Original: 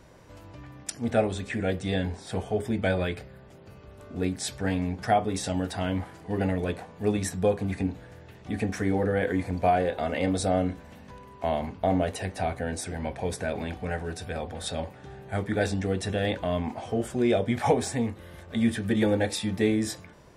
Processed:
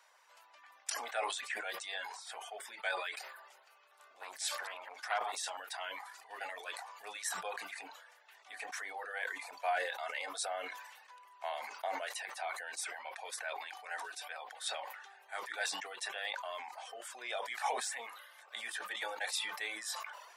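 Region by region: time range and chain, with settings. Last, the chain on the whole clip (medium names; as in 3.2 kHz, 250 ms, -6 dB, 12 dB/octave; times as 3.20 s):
3.27–5.57 s: chunks repeated in reverse 108 ms, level -8.5 dB + transformer saturation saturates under 1.1 kHz
whole clip: reverb removal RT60 0.62 s; high-pass 840 Hz 24 dB/octave; decay stretcher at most 46 dB/s; trim -4.5 dB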